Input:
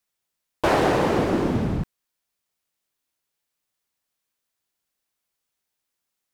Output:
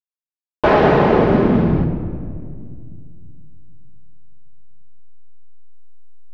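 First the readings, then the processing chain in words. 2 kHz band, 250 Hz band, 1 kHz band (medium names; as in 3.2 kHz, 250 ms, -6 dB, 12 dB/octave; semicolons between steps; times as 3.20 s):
+6.0 dB, +8.0 dB, +6.5 dB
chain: hysteresis with a dead band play -43.5 dBFS; distance through air 260 m; simulated room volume 3900 m³, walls mixed, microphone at 1.4 m; trim +6.5 dB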